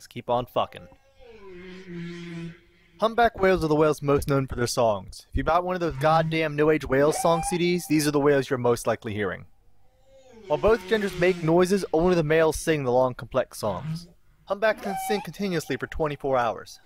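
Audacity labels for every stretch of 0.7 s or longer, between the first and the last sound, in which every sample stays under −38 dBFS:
9.430000	10.440000	silence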